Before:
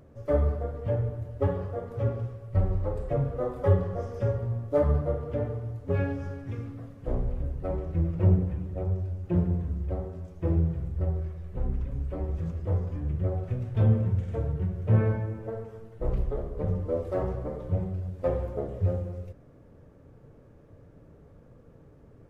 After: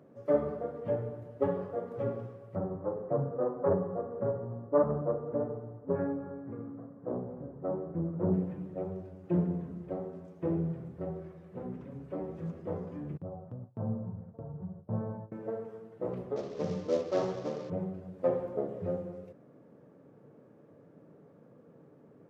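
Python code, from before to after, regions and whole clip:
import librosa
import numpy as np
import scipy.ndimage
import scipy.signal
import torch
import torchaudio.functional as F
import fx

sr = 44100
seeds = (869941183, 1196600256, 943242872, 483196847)

y = fx.chain(x, sr, fx.self_delay(depth_ms=0.28),
    fx.lowpass(hz=1400.0, slope=24), at=(2.55, 8.34))
y = fx.chain(y, sr, fx.lowpass(hz=1000.0, slope=24),
    fx.peak_eq(hz=360.0, db=-13.5, octaves=1.3),
    fx.gate_hold(open_db=-25.0, close_db=-32.0, hold_ms=71.0, range_db=-21, attack_ms=1.4, release_ms=100.0), at=(13.17, 15.32))
y = fx.chain(y, sr, fx.cvsd(bps=32000),
    fx.high_shelf(hz=2000.0, db=9.5), at=(16.36, 17.7))
y = scipy.signal.sosfilt(scipy.signal.butter(4, 160.0, 'highpass', fs=sr, output='sos'), y)
y = fx.high_shelf(y, sr, hz=2200.0, db=-10.0)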